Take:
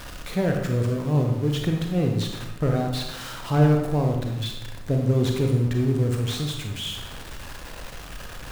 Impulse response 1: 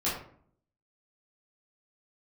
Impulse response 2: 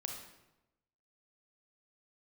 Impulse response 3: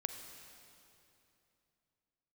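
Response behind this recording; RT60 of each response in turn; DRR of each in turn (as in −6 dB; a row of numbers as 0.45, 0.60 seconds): 2; 0.55, 0.95, 2.9 seconds; −9.5, 2.0, 6.0 decibels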